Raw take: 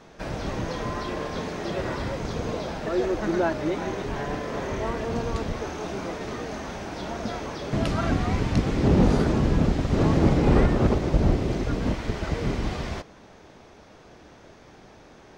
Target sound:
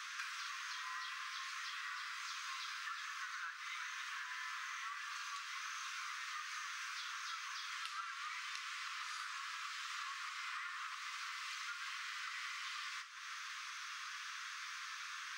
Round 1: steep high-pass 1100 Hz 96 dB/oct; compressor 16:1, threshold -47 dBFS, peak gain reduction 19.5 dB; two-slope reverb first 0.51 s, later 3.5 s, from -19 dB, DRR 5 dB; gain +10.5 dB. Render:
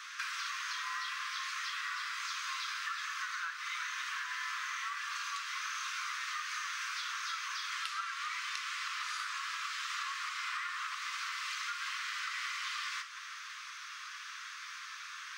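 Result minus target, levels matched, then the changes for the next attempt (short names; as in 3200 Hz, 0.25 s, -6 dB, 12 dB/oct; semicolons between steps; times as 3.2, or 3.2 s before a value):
compressor: peak gain reduction -6.5 dB
change: compressor 16:1, threshold -54 dBFS, peak gain reduction 26 dB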